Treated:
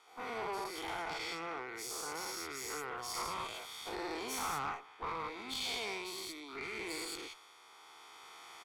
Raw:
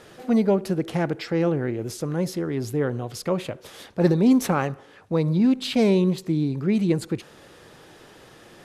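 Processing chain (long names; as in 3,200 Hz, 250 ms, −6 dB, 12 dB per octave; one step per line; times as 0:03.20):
every bin's largest magnitude spread in time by 240 ms
camcorder AGC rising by 5.4 dB per second
high-pass filter 520 Hz 24 dB per octave
high-shelf EQ 8,100 Hz −4.5 dB
comb filter 0.9 ms, depth 90%
downward compressor 2 to 1, threshold −27 dBFS, peak gain reduction 7.5 dB
tube saturation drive 24 dB, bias 0.65
multiband upward and downward expander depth 40%
level −8 dB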